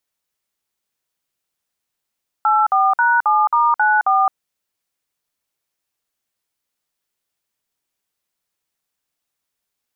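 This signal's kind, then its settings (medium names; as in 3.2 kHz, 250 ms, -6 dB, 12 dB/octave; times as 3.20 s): DTMF "84#7*94", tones 216 ms, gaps 53 ms, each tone -14.5 dBFS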